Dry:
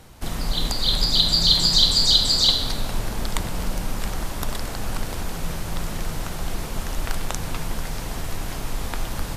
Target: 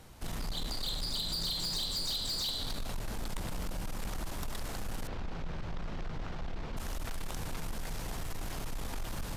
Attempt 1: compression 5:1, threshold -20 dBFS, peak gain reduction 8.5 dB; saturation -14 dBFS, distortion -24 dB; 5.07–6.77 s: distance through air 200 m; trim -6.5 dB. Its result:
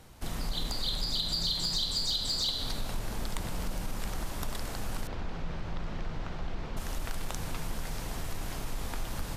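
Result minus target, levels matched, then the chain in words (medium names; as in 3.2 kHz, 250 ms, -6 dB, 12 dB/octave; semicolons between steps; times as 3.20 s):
saturation: distortion -12 dB
compression 5:1, threshold -20 dBFS, peak gain reduction 8.5 dB; saturation -24 dBFS, distortion -12 dB; 5.07–6.77 s: distance through air 200 m; trim -6.5 dB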